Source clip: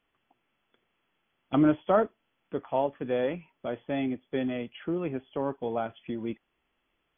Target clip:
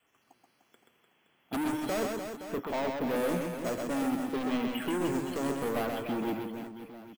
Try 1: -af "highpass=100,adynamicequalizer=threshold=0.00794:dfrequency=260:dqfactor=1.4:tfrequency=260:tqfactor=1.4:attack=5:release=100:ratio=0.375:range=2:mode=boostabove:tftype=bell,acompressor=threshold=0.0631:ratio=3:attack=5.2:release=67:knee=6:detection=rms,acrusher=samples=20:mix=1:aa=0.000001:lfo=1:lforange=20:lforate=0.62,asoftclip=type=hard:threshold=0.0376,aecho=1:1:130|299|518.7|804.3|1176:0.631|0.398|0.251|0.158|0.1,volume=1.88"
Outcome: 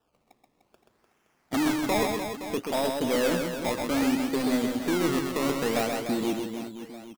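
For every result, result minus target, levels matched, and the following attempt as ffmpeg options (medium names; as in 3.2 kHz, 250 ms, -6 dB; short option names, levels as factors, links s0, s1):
decimation with a swept rate: distortion +15 dB; hard clipper: distortion -5 dB
-af "highpass=100,adynamicequalizer=threshold=0.00794:dfrequency=260:dqfactor=1.4:tfrequency=260:tqfactor=1.4:attack=5:release=100:ratio=0.375:range=2:mode=boostabove:tftype=bell,acompressor=threshold=0.0631:ratio=3:attack=5.2:release=67:knee=6:detection=rms,acrusher=samples=4:mix=1:aa=0.000001:lfo=1:lforange=4:lforate=0.62,asoftclip=type=hard:threshold=0.0376,aecho=1:1:130|299|518.7|804.3|1176:0.631|0.398|0.251|0.158|0.1,volume=1.88"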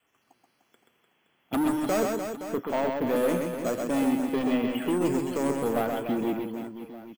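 hard clipper: distortion -4 dB
-af "highpass=100,adynamicequalizer=threshold=0.00794:dfrequency=260:dqfactor=1.4:tfrequency=260:tqfactor=1.4:attack=5:release=100:ratio=0.375:range=2:mode=boostabove:tftype=bell,acompressor=threshold=0.0631:ratio=3:attack=5.2:release=67:knee=6:detection=rms,acrusher=samples=4:mix=1:aa=0.000001:lfo=1:lforange=4:lforate=0.62,asoftclip=type=hard:threshold=0.0168,aecho=1:1:130|299|518.7|804.3|1176:0.631|0.398|0.251|0.158|0.1,volume=1.88"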